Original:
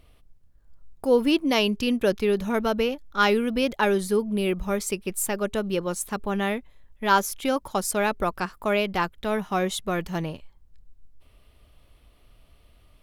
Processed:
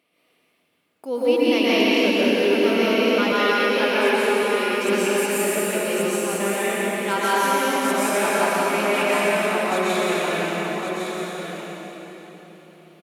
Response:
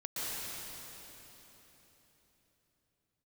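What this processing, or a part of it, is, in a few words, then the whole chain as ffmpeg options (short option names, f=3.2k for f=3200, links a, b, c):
PA in a hall: -filter_complex "[0:a]highpass=f=200:w=0.5412,highpass=f=200:w=1.3066,equalizer=f=2.3k:t=o:w=0.52:g=7,aecho=1:1:180:0.562[a];[1:a]atrim=start_sample=2205[b];[a][b]afir=irnorm=-1:irlink=0,asettb=1/sr,asplit=3[c][d][e];[c]atrim=end=3.324[f];[d]atrim=start=3.32:end=4.88,asetpts=PTS-STARTPTS,afade=t=in:d=0.004:c=qsin,afade=t=out:st=1.556:d=0.004:c=qsin,highpass=330[g];[e]atrim=start=4.876[h];[f][g]acrossfade=d=0.004:c1=hsin:c2=qsin[i];[i][h]acrossfade=d=0.004:c1=qsin:c2=hsin,aecho=1:1:1110:0.473,volume=-2dB"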